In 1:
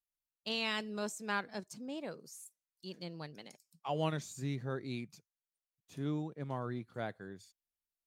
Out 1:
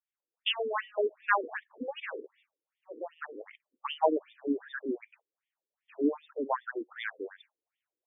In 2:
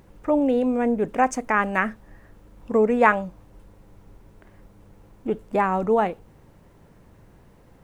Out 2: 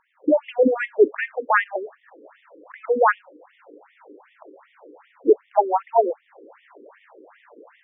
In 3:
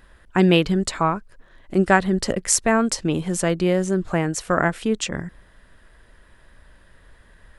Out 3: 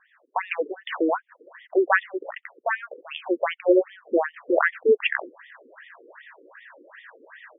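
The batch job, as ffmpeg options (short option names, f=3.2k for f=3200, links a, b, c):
-af "dynaudnorm=f=130:g=3:m=15dB,afftfilt=real='re*between(b*sr/1024,360*pow(2600/360,0.5+0.5*sin(2*PI*2.6*pts/sr))/1.41,360*pow(2600/360,0.5+0.5*sin(2*PI*2.6*pts/sr))*1.41)':imag='im*between(b*sr/1024,360*pow(2600/360,0.5+0.5*sin(2*PI*2.6*pts/sr))/1.41,360*pow(2600/360,0.5+0.5*sin(2*PI*2.6*pts/sr))*1.41)':win_size=1024:overlap=0.75"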